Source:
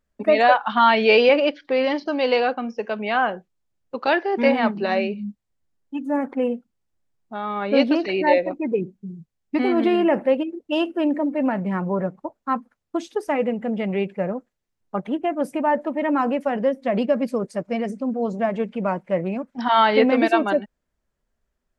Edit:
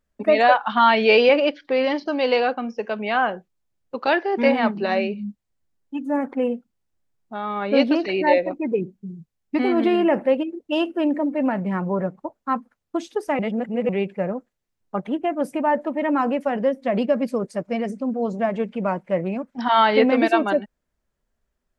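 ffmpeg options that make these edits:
-filter_complex "[0:a]asplit=3[a][b][c];[a]atrim=end=13.392[d];[b]atrim=start=13.388:end=13.892,asetpts=PTS-STARTPTS,areverse[e];[c]atrim=start=13.888[f];[d][e]acrossfade=d=0.004:c1=hsin:c2=hsin[g];[g][f]acrossfade=d=0.004:c1=hsin:c2=hsin"

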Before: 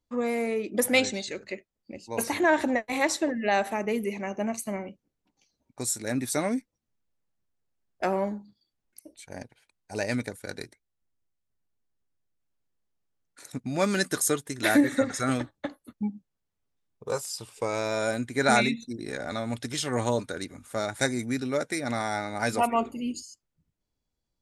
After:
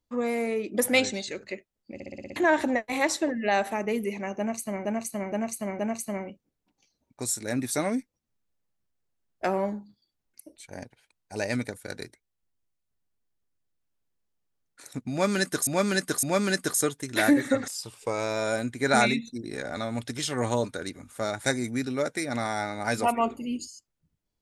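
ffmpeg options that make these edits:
-filter_complex "[0:a]asplit=14[a][b][c][d][e][f][g][h][i][j][k][l][m][n];[a]atrim=end=2.002[o];[b]atrim=start=1.938:end=2.002[p];[c]atrim=start=1.938:end=2.002[q];[d]atrim=start=1.938:end=2.002[r];[e]atrim=start=1.938:end=2.002[s];[f]atrim=start=1.938:end=2.002[t];[g]atrim=start=1.938:end=2.002[u];[h]atrim=start=2.358:end=4.852[v];[i]atrim=start=4.378:end=4.852[w];[j]atrim=start=4.378:end=4.852[x];[k]atrim=start=4.378:end=14.262[y];[l]atrim=start=13.698:end=14.262[z];[m]atrim=start=13.698:end=15.152[aa];[n]atrim=start=17.228[ab];[o][p]acrossfade=d=0.004:c1=hsin:c2=hsin[ac];[ac][q]acrossfade=d=0.004:c1=hsin:c2=hsin[ad];[ad][r]acrossfade=d=0.004:c1=hsin:c2=hsin[ae];[ae][s]acrossfade=d=0.004:c1=hsin:c2=hsin[af];[af][t]acrossfade=d=0.004:c1=hsin:c2=hsin[ag];[ag][u]acrossfade=d=0.004:c1=hsin:c2=hsin[ah];[ah][v]acrossfade=d=0.004:c1=hsin:c2=hsin[ai];[ai][w]acrossfade=d=0.004:c1=hsin:c2=hsin[aj];[aj][x]acrossfade=d=0.004:c1=hsin:c2=hsin[ak];[ak][y]acrossfade=d=0.004:c1=hsin:c2=hsin[al];[al][z]acrossfade=d=0.004:c1=hsin:c2=hsin[am];[am][aa]acrossfade=d=0.004:c1=hsin:c2=hsin[an];[an][ab]acrossfade=d=0.004:c1=hsin:c2=hsin"

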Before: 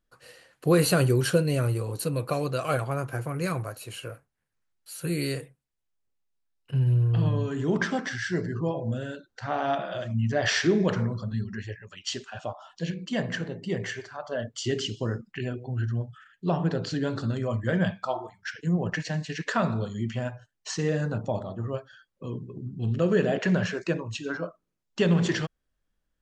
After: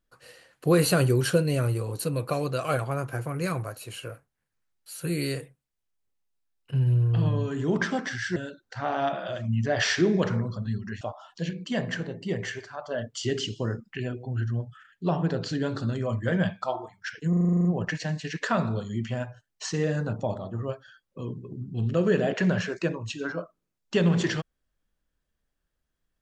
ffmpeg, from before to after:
-filter_complex "[0:a]asplit=12[a][b][c][d][e][f][g][h][i][j][k][l];[a]atrim=end=8.362[m];[b]atrim=start=9.018:end=11.672[n];[c]atrim=start=12.418:end=18.742[o];[d]atrim=start=18.698:end=18.742[p];[e]atrim=start=18.698:end=18.742[q];[f]atrim=start=18.698:end=18.742[r];[g]atrim=start=18.698:end=18.742[s];[h]atrim=start=18.698:end=18.742[t];[i]atrim=start=18.698:end=18.742[u];[j]atrim=start=18.698:end=18.742[v];[k]atrim=start=18.698:end=18.742[w];[l]atrim=start=18.698[x];[m][n]acrossfade=d=0.004:c1=hsin:c2=hsin[y];[y][o]acrossfade=d=0.004:c1=hsin:c2=hsin[z];[z][p]acrossfade=d=0.004:c1=hsin:c2=hsin[aa];[aa][q]acrossfade=d=0.004:c1=hsin:c2=hsin[ab];[ab][r]acrossfade=d=0.004:c1=hsin:c2=hsin[ac];[ac][s]acrossfade=d=0.004:c1=hsin:c2=hsin[ad];[ad][t]acrossfade=d=0.004:c1=hsin:c2=hsin[ae];[ae][u]acrossfade=d=0.004:c1=hsin:c2=hsin[af];[af][v]acrossfade=d=0.004:c1=hsin:c2=hsin[ag];[ag][w]acrossfade=d=0.004:c1=hsin:c2=hsin[ah];[ah][x]acrossfade=d=0.004:c1=hsin:c2=hsin"

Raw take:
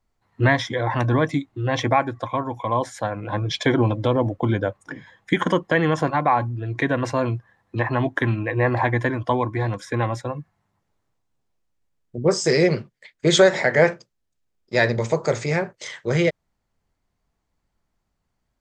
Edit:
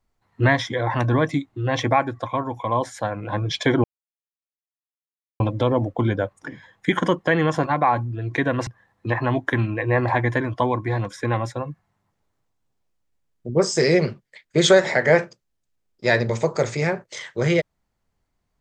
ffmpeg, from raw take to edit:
-filter_complex "[0:a]asplit=3[a][b][c];[a]atrim=end=3.84,asetpts=PTS-STARTPTS,afade=t=out:st=3.836:d=0.004:c=hsin,apad=pad_dur=1.56[d];[b]atrim=start=3.84:end=7.112,asetpts=PTS-STARTPTS,afade=t=in:d=0.004:c=hsin[e];[c]atrim=start=7.358[f];[d][e]concat=n=2:v=0:a=1[g];[g][f]acrossfade=d=0.004:c1=hsin:c2=hsin"

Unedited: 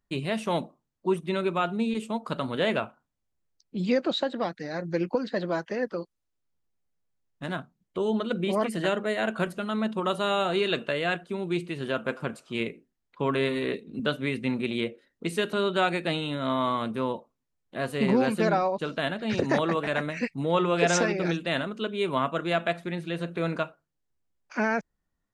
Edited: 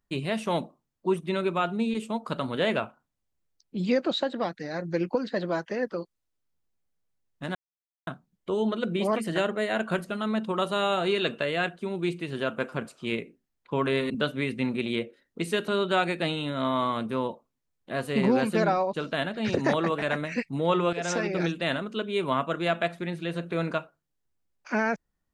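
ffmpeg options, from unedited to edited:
-filter_complex "[0:a]asplit=4[a][b][c][d];[a]atrim=end=7.55,asetpts=PTS-STARTPTS,afade=t=out:st=7.546:d=0.004:c=hsin,apad=pad_dur=0.52[e];[b]atrim=start=7.55:end=13.582,asetpts=PTS-STARTPTS,afade=t=in:d=0.004:c=hsin[f];[c]atrim=start=13.948:end=20.78,asetpts=PTS-STARTPTS,afade=t=out:st=6.828:d=0.004:c=hsin:silence=0.211349[g];[d]atrim=start=20.78,asetpts=PTS-STARTPTS,afade=t=in:d=0.43:silence=0.211349[h];[e][f]concat=n=2:v=0:a=1[i];[g][h]concat=n=2:v=0:a=1[j];[i][j]acrossfade=d=0.004:c1=hsin:c2=hsin"

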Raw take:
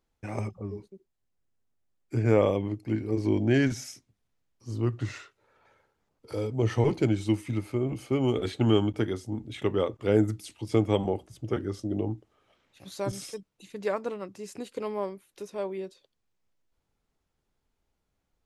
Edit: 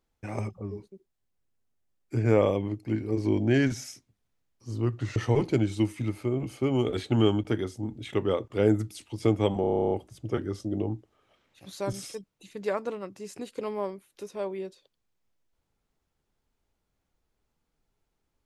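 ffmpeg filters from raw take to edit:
-filter_complex "[0:a]asplit=12[a][b][c][d][e][f][g][h][i][j][k][l];[a]atrim=end=5.162[m];[b]atrim=start=6.648:end=11.132[n];[c]atrim=start=11.098:end=11.132[o];[d]atrim=start=11.098:end=11.132[p];[e]atrim=start=11.098:end=11.132[q];[f]atrim=start=11.098:end=11.132[r];[g]atrim=start=11.098:end=11.132[s];[h]atrim=start=11.098:end=11.132[t];[i]atrim=start=11.098:end=11.132[u];[j]atrim=start=11.098:end=11.132[v];[k]atrim=start=11.098:end=11.132[w];[l]atrim=start=11.098[x];[m][n]acrossfade=d=0.004:c1=hsin:c2=hsin[y];[y][o]acrossfade=d=0.004:c1=hsin:c2=hsin[z];[z][p]acrossfade=d=0.004:c1=hsin:c2=hsin[aa];[aa][q]acrossfade=d=0.004:c1=hsin:c2=hsin[ab];[ab][r]acrossfade=d=0.004:c1=hsin:c2=hsin[ac];[ac][s]acrossfade=d=0.004:c1=hsin:c2=hsin[ad];[ad][t]acrossfade=d=0.004:c1=hsin:c2=hsin[ae];[ae][u]acrossfade=d=0.004:c1=hsin:c2=hsin[af];[af][v]acrossfade=d=0.004:c1=hsin:c2=hsin[ag];[ag][w]acrossfade=d=0.004:c1=hsin:c2=hsin[ah];[ah][x]acrossfade=d=0.004:c1=hsin:c2=hsin"

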